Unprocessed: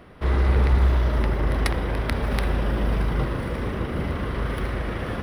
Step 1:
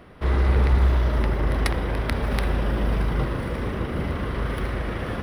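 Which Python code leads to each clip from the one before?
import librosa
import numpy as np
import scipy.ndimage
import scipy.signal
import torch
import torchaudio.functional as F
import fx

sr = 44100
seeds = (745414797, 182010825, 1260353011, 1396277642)

y = x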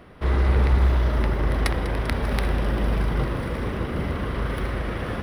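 y = fx.echo_thinned(x, sr, ms=197, feedback_pct=83, hz=420.0, wet_db=-15.5)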